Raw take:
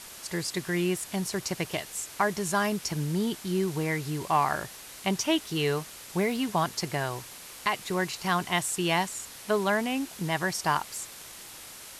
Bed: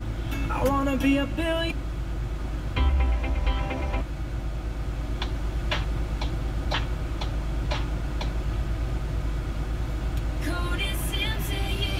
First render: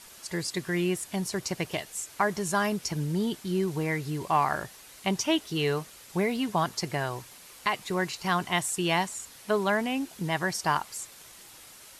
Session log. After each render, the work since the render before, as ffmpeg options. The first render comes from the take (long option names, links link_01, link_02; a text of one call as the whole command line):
ffmpeg -i in.wav -af "afftdn=noise_reduction=6:noise_floor=-45" out.wav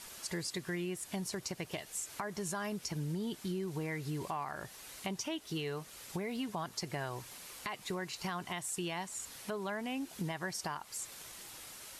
ffmpeg -i in.wav -af "alimiter=limit=-22.5dB:level=0:latency=1:release=347,acompressor=threshold=-37dB:ratio=2.5" out.wav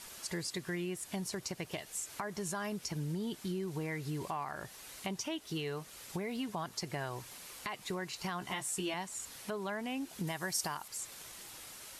ffmpeg -i in.wav -filter_complex "[0:a]asettb=1/sr,asplit=3[link_01][link_02][link_03];[link_01]atrim=end=8.404[link_04];[link_02]atrim=start=8.4:end=8.94,asetpts=PTS-STARTPTS,afade=type=in:duration=0.004:curve=qsin,afade=type=out:start_time=0.536:duration=0.004:curve=qsin,asplit=2[link_05][link_06];[link_06]adelay=15,volume=-3dB[link_07];[link_05][link_07]amix=inputs=2:normalize=0,atrim=end_sample=23814[link_08];[link_03]atrim=start=8.936[link_09];[link_04][link_08]acrossfade=duration=0.004:curve1=hsin:curve2=qsin[link_10];[link_10][link_09]acrossfade=duration=0.004:curve1=qsin:curve2=hsin,asettb=1/sr,asplit=3[link_11][link_12][link_13];[link_11]atrim=end=10.274[link_14];[link_12]atrim=start=10.27:end=10.88,asetpts=PTS-STARTPTS,afade=type=in:duration=0.004:curve=qsin,afade=type=out:start_time=0.606:duration=0.004:curve=qsin,highshelf=frequency=6100:gain=12[link_15];[link_13]atrim=start=10.876[link_16];[link_14][link_15]acrossfade=duration=0.004:curve1=hsin:curve2=qsin[link_17];[link_17][link_16]acrossfade=duration=0.004:curve1=qsin:curve2=hsin" out.wav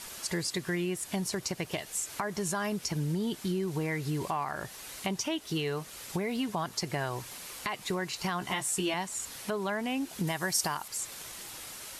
ffmpeg -i in.wav -af "volume=6dB" out.wav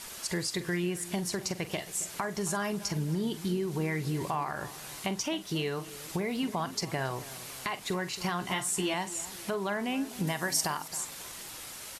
ffmpeg -i in.wav -filter_complex "[0:a]asplit=2[link_01][link_02];[link_02]adelay=45,volume=-13dB[link_03];[link_01][link_03]amix=inputs=2:normalize=0,asplit=2[link_04][link_05];[link_05]adelay=272,lowpass=frequency=2000:poles=1,volume=-15.5dB,asplit=2[link_06][link_07];[link_07]adelay=272,lowpass=frequency=2000:poles=1,volume=0.5,asplit=2[link_08][link_09];[link_09]adelay=272,lowpass=frequency=2000:poles=1,volume=0.5,asplit=2[link_10][link_11];[link_11]adelay=272,lowpass=frequency=2000:poles=1,volume=0.5,asplit=2[link_12][link_13];[link_13]adelay=272,lowpass=frequency=2000:poles=1,volume=0.5[link_14];[link_04][link_06][link_08][link_10][link_12][link_14]amix=inputs=6:normalize=0" out.wav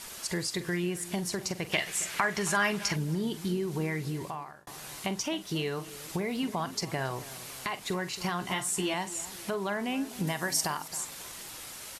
ffmpeg -i in.wav -filter_complex "[0:a]asettb=1/sr,asplit=3[link_01][link_02][link_03];[link_01]atrim=end=1.724[link_04];[link_02]atrim=start=1.72:end=2.96,asetpts=PTS-STARTPTS,afade=type=in:duration=0.004:curve=qsin,afade=type=out:start_time=1.236:duration=0.004:curve=qsin,equalizer=frequency=2100:width=0.68:gain=11.5[link_05];[link_03]atrim=start=2.956[link_06];[link_04][link_05]acrossfade=duration=0.004:curve1=hsin:curve2=qsin[link_07];[link_07][link_06]acrossfade=duration=0.004:curve1=qsin:curve2=hsin,asplit=2[link_08][link_09];[link_08]atrim=end=4.67,asetpts=PTS-STARTPTS,afade=type=out:start_time=3.68:duration=0.99:curve=qsin[link_10];[link_09]atrim=start=4.67,asetpts=PTS-STARTPTS,afade=type=in:duration=0.004:curve=hsin[link_11];[link_10][link_11]concat=n=2:v=0:a=1" out.wav